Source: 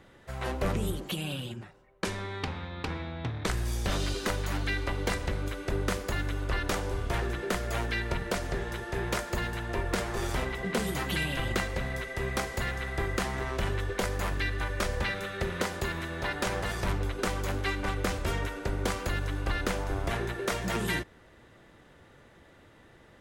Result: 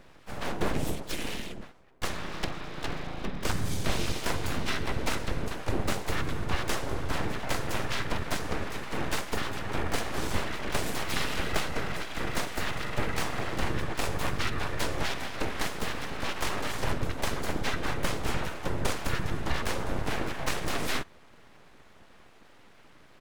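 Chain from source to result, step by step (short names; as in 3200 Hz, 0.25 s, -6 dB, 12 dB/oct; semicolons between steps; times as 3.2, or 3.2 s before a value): harmoniser -7 st -2 dB, -4 st -7 dB, +5 st -8 dB; full-wave rectifier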